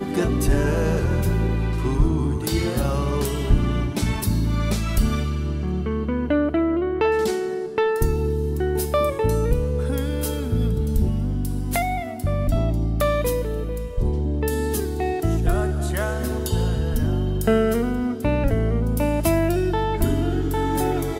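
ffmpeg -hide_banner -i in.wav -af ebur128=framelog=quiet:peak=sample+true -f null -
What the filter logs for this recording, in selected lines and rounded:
Integrated loudness:
  I:         -22.9 LUFS
  Threshold: -32.9 LUFS
Loudness range:
  LRA:         2.2 LU
  Threshold: -43.0 LUFS
  LRA low:   -24.0 LUFS
  LRA high:  -21.8 LUFS
Sample peak:
  Peak:       -6.0 dBFS
True peak:
  Peak:       -6.0 dBFS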